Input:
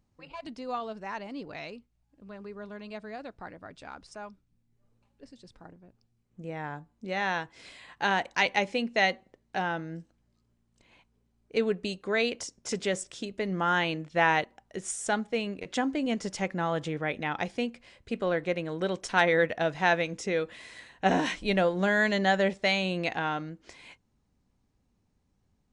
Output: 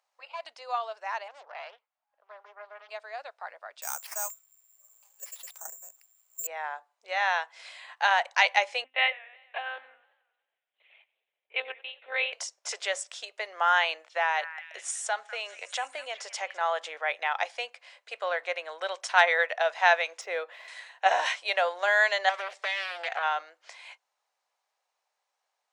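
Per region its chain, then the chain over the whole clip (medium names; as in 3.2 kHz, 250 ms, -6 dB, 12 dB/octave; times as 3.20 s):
1.28–2.89 s: band-pass filter 980 Hz, Q 0.83 + loudspeaker Doppler distortion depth 0.62 ms
3.82–6.47 s: treble shelf 4.4 kHz +3.5 dB + careless resampling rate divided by 6×, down none, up zero stuff
8.84–12.33 s: static phaser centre 2.6 kHz, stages 4 + monotone LPC vocoder at 8 kHz 260 Hz + modulated delay 91 ms, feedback 59%, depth 140 cents, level -21 dB
14.17–16.61 s: compression 2:1, threshold -29 dBFS + repeats whose band climbs or falls 201 ms, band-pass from 1.7 kHz, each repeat 0.7 oct, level -10 dB
20.21–20.68 s: median filter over 5 samples + tilt EQ -3 dB/octave
22.29–23.23 s: comb 4.3 ms, depth 30% + compression 12:1, threshold -28 dBFS + loudspeaker Doppler distortion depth 0.44 ms
whole clip: steep high-pass 610 Hz 36 dB/octave; treble shelf 8.8 kHz -6 dB; trim +4 dB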